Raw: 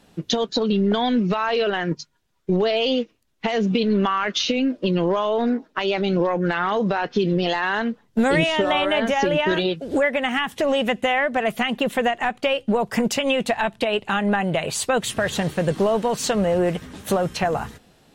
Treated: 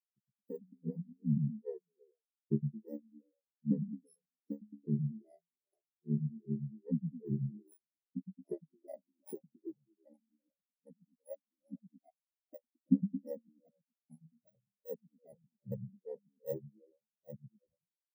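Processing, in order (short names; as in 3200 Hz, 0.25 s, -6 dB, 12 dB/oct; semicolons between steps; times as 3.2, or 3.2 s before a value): FFT order left unsorted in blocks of 32 samples; grains 0.243 s, grains 2.5/s, pitch spread up and down by 0 st; ring modulator 37 Hz; delay with a stepping band-pass 0.11 s, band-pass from 150 Hz, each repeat 0.7 oct, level 0 dB; spectral expander 4:1; gain -4.5 dB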